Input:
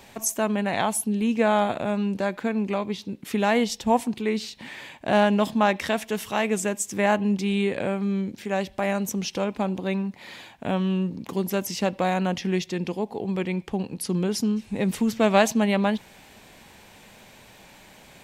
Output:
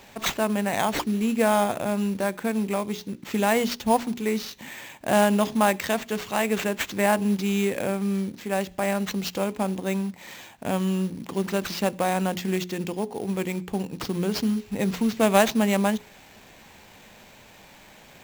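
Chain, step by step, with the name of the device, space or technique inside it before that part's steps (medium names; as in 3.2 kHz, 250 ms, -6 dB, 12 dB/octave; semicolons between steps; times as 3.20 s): early companding sampler (sample-rate reducer 10 kHz, jitter 0%; companded quantiser 6-bit); hum notches 60/120/180/240/300/360/420 Hz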